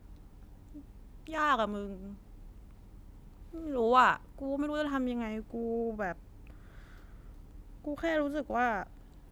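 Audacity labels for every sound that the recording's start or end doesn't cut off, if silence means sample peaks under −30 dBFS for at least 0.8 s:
1.330000	1.820000	sound
3.660000	6.120000	sound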